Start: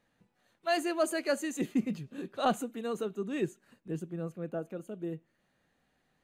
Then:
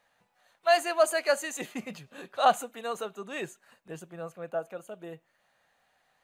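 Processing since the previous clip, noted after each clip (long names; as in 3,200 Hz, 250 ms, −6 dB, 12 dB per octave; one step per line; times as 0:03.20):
low shelf with overshoot 470 Hz −12 dB, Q 1.5
level +5.5 dB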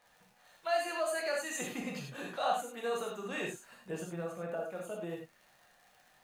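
downward compressor 2.5 to 1, threshold −39 dBFS, peak gain reduction 15 dB
surface crackle 82 per second −52 dBFS
reverb whose tail is shaped and stops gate 120 ms flat, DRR −1.5 dB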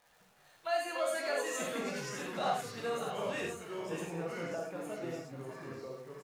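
surface crackle 190 per second −55 dBFS
delay with pitch and tempo change per echo 118 ms, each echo −4 semitones, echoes 2, each echo −6 dB
single-tap delay 594 ms −10.5 dB
level −1.5 dB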